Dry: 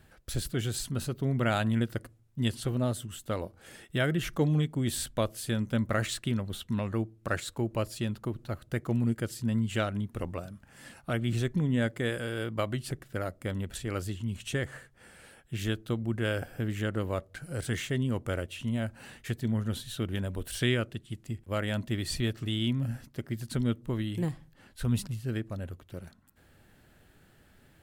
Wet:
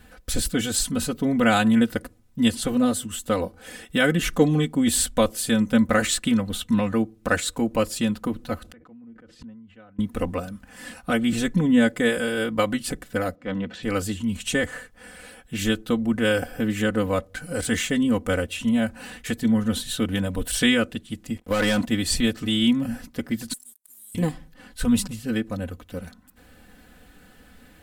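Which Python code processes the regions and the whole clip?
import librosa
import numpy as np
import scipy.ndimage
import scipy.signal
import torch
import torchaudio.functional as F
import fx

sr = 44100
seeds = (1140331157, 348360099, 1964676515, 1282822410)

y = fx.chain(x, sr, fx.env_lowpass_down(base_hz=1800.0, full_db=-27.0),
    fx.gate_flip(shuts_db=-35.0, range_db=-28),
    fx.sustainer(db_per_s=52.0), at=(8.6, 9.99))
y = fx.chain(y, sr, fx.highpass(hz=120.0, slope=24),
    fx.transient(attack_db=-8, sustain_db=2),
    fx.air_absorb(metres=190.0), at=(13.35, 13.83))
y = fx.chain(y, sr, fx.low_shelf(hz=150.0, db=-10.0),
    fx.leveller(passes=3),
    fx.level_steps(step_db=10), at=(21.36, 21.86))
y = fx.chain(y, sr, fx.cheby2_highpass(hz=2700.0, order=4, stop_db=60),
    fx.leveller(passes=3), at=(23.53, 24.15))
y = fx.dynamic_eq(y, sr, hz=7800.0, q=2.1, threshold_db=-56.0, ratio=4.0, max_db=4)
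y = y + 0.88 * np.pad(y, (int(4.0 * sr / 1000.0), 0))[:len(y)]
y = F.gain(torch.from_numpy(y), 7.0).numpy()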